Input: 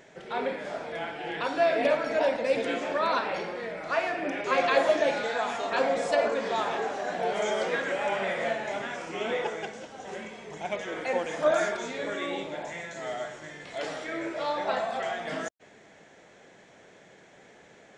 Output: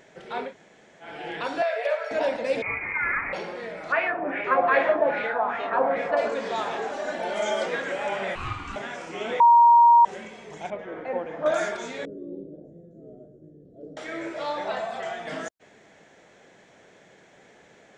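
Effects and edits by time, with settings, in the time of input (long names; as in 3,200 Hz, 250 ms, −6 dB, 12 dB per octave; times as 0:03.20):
0:00.47–0:01.07: fill with room tone, crossfade 0.16 s
0:01.62–0:02.11: Chebyshev high-pass with heavy ripple 430 Hz, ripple 6 dB
0:02.62–0:03.33: voice inversion scrambler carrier 2,700 Hz
0:03.92–0:06.17: auto-filter low-pass sine 2.5 Hz 950–2,400 Hz
0:06.92–0:07.66: comb filter 3.4 ms
0:08.35–0:08.76: ring modulation 570 Hz
0:09.40–0:10.05: beep over 942 Hz −11 dBFS
0:10.70–0:11.46: Bessel low-pass filter 1,200 Hz
0:12.05–0:13.97: inverse Chebyshev low-pass filter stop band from 870 Hz
0:14.68–0:15.27: notch comb filter 270 Hz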